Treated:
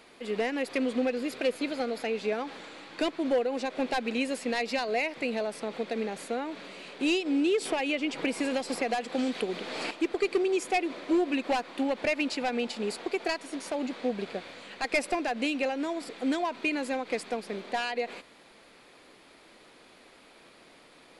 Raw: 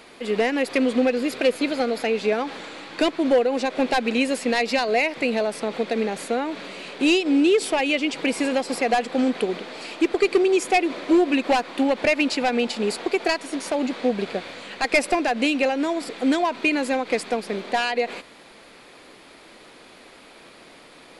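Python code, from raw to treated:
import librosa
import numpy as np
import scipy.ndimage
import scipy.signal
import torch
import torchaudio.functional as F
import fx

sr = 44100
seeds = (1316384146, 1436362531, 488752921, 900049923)

y = fx.band_squash(x, sr, depth_pct=100, at=(7.65, 9.91))
y = y * 10.0 ** (-8.0 / 20.0)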